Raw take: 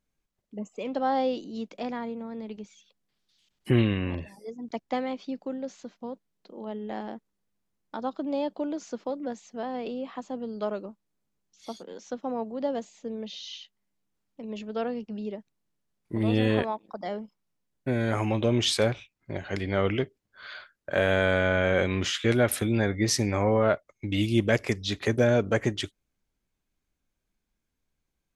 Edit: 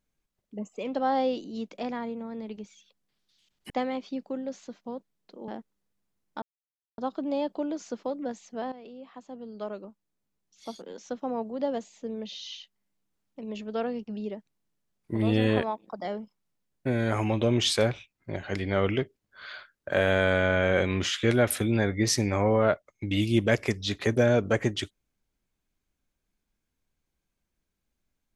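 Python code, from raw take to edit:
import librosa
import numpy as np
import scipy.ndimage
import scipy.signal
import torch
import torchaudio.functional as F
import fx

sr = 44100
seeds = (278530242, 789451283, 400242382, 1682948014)

y = fx.edit(x, sr, fx.cut(start_s=3.7, length_s=1.16),
    fx.cut(start_s=6.64, length_s=0.41),
    fx.insert_silence(at_s=7.99, length_s=0.56),
    fx.fade_in_from(start_s=9.73, length_s=2.15, floor_db=-14.0), tone=tone)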